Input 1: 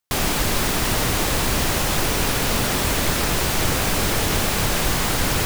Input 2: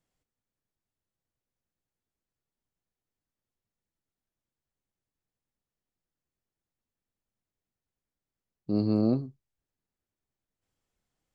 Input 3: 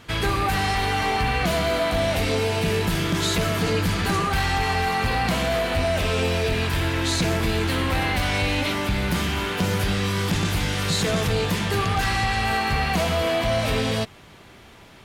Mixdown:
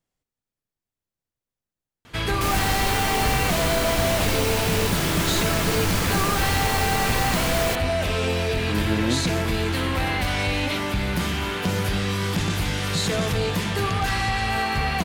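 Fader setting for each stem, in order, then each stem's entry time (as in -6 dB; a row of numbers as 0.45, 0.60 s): -5.0, -0.5, -1.0 dB; 2.30, 0.00, 2.05 s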